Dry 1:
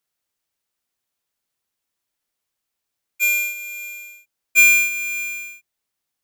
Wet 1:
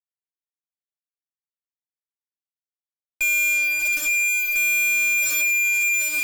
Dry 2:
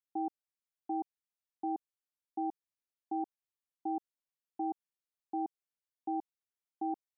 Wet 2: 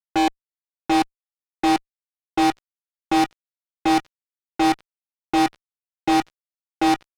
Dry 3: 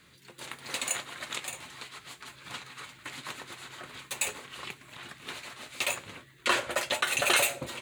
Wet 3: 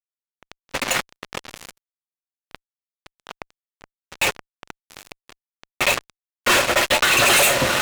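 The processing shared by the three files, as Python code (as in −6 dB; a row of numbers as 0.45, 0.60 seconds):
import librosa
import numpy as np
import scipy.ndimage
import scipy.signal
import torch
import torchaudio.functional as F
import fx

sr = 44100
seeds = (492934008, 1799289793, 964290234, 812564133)

y = fx.env_lowpass(x, sr, base_hz=420.0, full_db=-22.5)
y = fx.echo_diffused(y, sr, ms=778, feedback_pct=49, wet_db=-7)
y = fx.fuzz(y, sr, gain_db=40.0, gate_db=-38.0)
y = y * 10.0 ** (-24 / 20.0) / np.sqrt(np.mean(np.square(y)))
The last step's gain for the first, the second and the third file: −6.5, 0.0, 0.0 decibels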